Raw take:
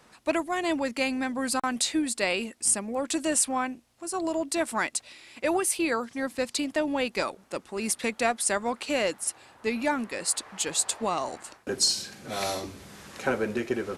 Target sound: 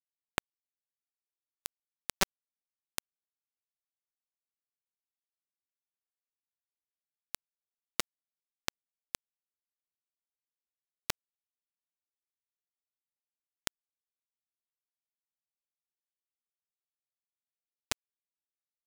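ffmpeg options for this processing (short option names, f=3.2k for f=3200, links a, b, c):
-filter_complex "[0:a]equalizer=f=900:t=o:w=3:g=-2.5,acrossover=split=340|710|2200[a][b][c][d];[a]acompressor=threshold=-35dB:ratio=4[e];[b]acompressor=threshold=-45dB:ratio=4[f];[c]acompressor=threshold=-33dB:ratio=4[g];[d]acompressor=threshold=-43dB:ratio=4[h];[e][f][g][h]amix=inputs=4:normalize=0,flanger=delay=3.4:depth=6.3:regen=12:speed=1:shape=triangular,bandreject=f=186.1:t=h:w=4,bandreject=f=372.2:t=h:w=4,bandreject=f=558.3:t=h:w=4,bandreject=f=744.4:t=h:w=4,bandreject=f=930.5:t=h:w=4,bandreject=f=1.1166k:t=h:w=4,bandreject=f=1.3027k:t=h:w=4,bandreject=f=1.4888k:t=h:w=4,bandreject=f=1.6749k:t=h:w=4,bandreject=f=1.861k:t=h:w=4,bandreject=f=2.0471k:t=h:w=4,bandreject=f=2.2332k:t=h:w=4,asetrate=32667,aresample=44100,acompressor=threshold=-38dB:ratio=16,acrusher=bits=3:mode=log:mix=0:aa=0.000001,aresample=11025,aresample=44100,asplit=2[i][j];[j]adelay=592,lowpass=f=1.6k:p=1,volume=-10.5dB,asplit=2[k][l];[l]adelay=592,lowpass=f=1.6k:p=1,volume=0.44,asplit=2[m][n];[n]adelay=592,lowpass=f=1.6k:p=1,volume=0.44,asplit=2[o][p];[p]adelay=592,lowpass=f=1.6k:p=1,volume=0.44,asplit=2[q][r];[r]adelay=592,lowpass=f=1.6k:p=1,volume=0.44[s];[k][m][o][q][s]amix=inputs=5:normalize=0[t];[i][t]amix=inputs=2:normalize=0,acrusher=bits=4:mix=0:aa=0.000001,volume=16dB"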